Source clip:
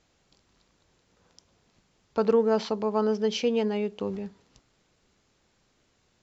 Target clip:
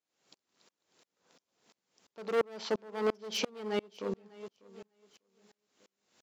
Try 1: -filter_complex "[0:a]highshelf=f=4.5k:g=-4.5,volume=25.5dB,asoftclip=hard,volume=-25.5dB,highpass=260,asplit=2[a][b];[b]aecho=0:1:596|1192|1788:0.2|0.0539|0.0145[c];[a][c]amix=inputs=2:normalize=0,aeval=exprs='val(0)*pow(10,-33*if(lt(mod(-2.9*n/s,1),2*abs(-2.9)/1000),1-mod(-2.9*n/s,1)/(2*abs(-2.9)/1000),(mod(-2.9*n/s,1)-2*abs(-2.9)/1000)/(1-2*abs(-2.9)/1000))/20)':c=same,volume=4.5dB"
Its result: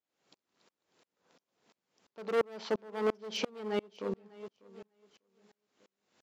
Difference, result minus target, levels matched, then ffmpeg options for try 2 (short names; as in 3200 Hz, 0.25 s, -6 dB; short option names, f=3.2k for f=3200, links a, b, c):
8000 Hz band -5.0 dB
-filter_complex "[0:a]highshelf=f=4.5k:g=4.5,volume=25.5dB,asoftclip=hard,volume=-25.5dB,highpass=260,asplit=2[a][b];[b]aecho=0:1:596|1192|1788:0.2|0.0539|0.0145[c];[a][c]amix=inputs=2:normalize=0,aeval=exprs='val(0)*pow(10,-33*if(lt(mod(-2.9*n/s,1),2*abs(-2.9)/1000),1-mod(-2.9*n/s,1)/(2*abs(-2.9)/1000),(mod(-2.9*n/s,1)-2*abs(-2.9)/1000)/(1-2*abs(-2.9)/1000))/20)':c=same,volume=4.5dB"